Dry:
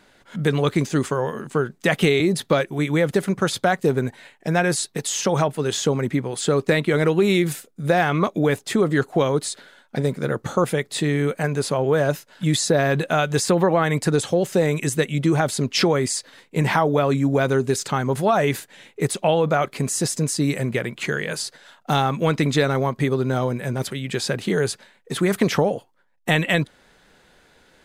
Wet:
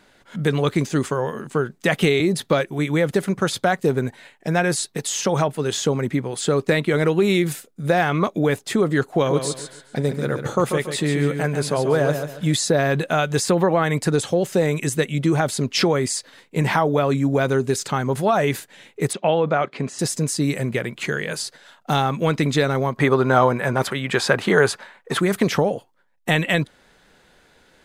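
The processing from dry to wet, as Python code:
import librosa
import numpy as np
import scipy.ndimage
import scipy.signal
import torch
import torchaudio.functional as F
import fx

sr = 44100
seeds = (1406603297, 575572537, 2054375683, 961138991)

y = fx.echo_feedback(x, sr, ms=140, feedback_pct=31, wet_db=-7.5, at=(9.25, 12.53), fade=0.02)
y = fx.bandpass_edges(y, sr, low_hz=140.0, high_hz=3600.0, at=(19.13, 19.99))
y = fx.peak_eq(y, sr, hz=1100.0, db=13.0, octaves=2.2, at=(22.96, 25.18), fade=0.02)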